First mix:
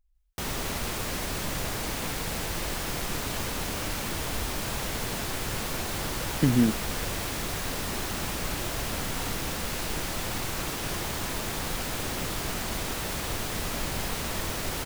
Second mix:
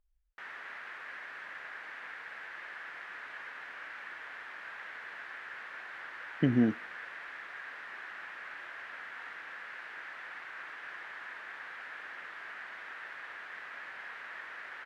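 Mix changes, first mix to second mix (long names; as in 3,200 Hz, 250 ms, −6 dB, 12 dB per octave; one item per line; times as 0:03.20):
background: add resonant band-pass 1,700 Hz, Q 3.8
master: add bass and treble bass −7 dB, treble −13 dB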